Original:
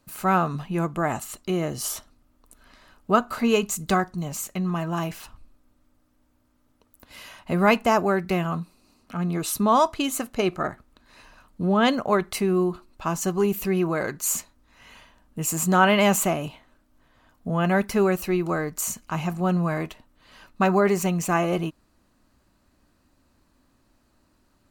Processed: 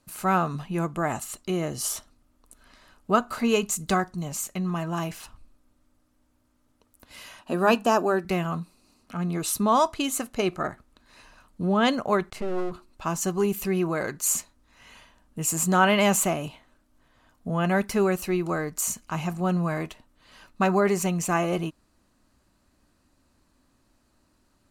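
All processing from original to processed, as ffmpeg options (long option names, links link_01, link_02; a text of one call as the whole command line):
ffmpeg -i in.wav -filter_complex "[0:a]asettb=1/sr,asplit=3[link_01][link_02][link_03];[link_01]atrim=end=7.414[link_04];[link_02]atrim=start=7.41:end=8.25,asetpts=PTS-STARTPTS,afade=type=in:duration=0.004:curve=qsin,afade=type=out:start_time=0.836:duration=0.004:curve=qsin,asuperstop=centerf=2100:order=4:qfactor=5.1,lowshelf=frequency=170:width_type=q:width=1.5:gain=-12.5,bandreject=frequency=50:width_type=h:width=6,bandreject=frequency=100:width_type=h:width=6,bandreject=frequency=150:width_type=h:width=6,bandreject=frequency=200:width_type=h:width=6[link_05];[link_03]atrim=start=8.246[link_06];[link_04][link_05]acrossfade=duration=0.004:curve1=hsin:curve2=qsin[link_07];[link_07][link_06]acrossfade=duration=0.004:curve1=qsin:curve2=hsin,asettb=1/sr,asplit=3[link_08][link_09][link_10];[link_08]atrim=end=12.304[link_11];[link_09]atrim=start=12.3:end=12.72,asetpts=PTS-STARTPTS,afade=type=in:duration=0.004:curve=qsin,afade=type=out:start_time=0.416:duration=0.004:curve=qsin,aemphasis=mode=reproduction:type=75fm,aeval=exprs='max(val(0),0)':channel_layout=same[link_12];[link_10]atrim=start=12.716[link_13];[link_11][link_12]acrossfade=duration=0.004:curve1=hsin:curve2=qsin[link_14];[link_14][link_13]acrossfade=duration=0.004:curve1=qsin:curve2=hsin,lowpass=11000,highshelf=frequency=7600:gain=7.5,volume=-2dB" out.wav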